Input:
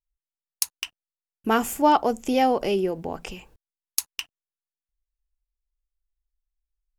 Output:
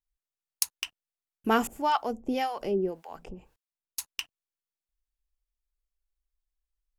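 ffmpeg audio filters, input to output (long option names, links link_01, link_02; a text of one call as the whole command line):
ffmpeg -i in.wav -filter_complex "[0:a]asettb=1/sr,asplit=3[link_01][link_02][link_03];[link_01]atrim=end=1.674[link_04];[link_02]atrim=start=1.67:end=3.99,asetpts=PTS-STARTPTS,afade=type=in:duration=0.004:curve=qsin,afade=type=out:start_time=2.316:duration=0.004:curve=qsin,acrossover=split=780[link_05][link_06];[link_05]aeval=exprs='val(0)*(1-1/2+1/2*cos(2*PI*1.8*n/s))':channel_layout=same[link_07];[link_06]aeval=exprs='val(0)*(1-1/2-1/2*cos(2*PI*1.8*n/s))':channel_layout=same[link_08];[link_07][link_08]amix=inputs=2:normalize=0[link_09];[link_03]atrim=start=3.986[link_10];[link_04][link_09]acrossfade=duration=0.004:curve1=hsin:curve2=qsin[link_11];[link_11][link_10]acrossfade=duration=0.004:curve1=qsin:curve2=hsin,volume=-2.5dB" out.wav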